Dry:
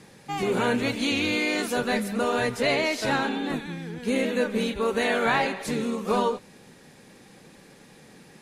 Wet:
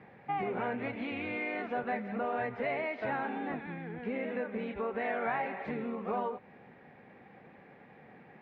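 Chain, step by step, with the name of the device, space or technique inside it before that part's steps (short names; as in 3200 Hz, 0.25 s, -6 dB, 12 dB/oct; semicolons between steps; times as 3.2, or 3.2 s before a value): bass amplifier (compressor 4:1, threshold -29 dBFS, peak gain reduction 9 dB; speaker cabinet 74–2300 Hz, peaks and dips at 170 Hz -3 dB, 310 Hz -3 dB, 730 Hz +8 dB, 2100 Hz +4 dB); gain -4 dB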